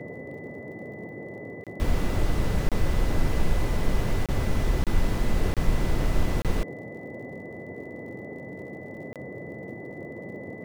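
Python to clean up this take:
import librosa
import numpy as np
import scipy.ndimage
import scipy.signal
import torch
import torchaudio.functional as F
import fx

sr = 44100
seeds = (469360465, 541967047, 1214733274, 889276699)

y = fx.fix_declick_ar(x, sr, threshold=6.5)
y = fx.notch(y, sr, hz=2000.0, q=30.0)
y = fx.fix_interpolate(y, sr, at_s=(1.64, 2.69, 4.26, 4.84, 5.54, 6.42, 9.13), length_ms=27.0)
y = fx.noise_reduce(y, sr, print_start_s=8.54, print_end_s=9.04, reduce_db=29.0)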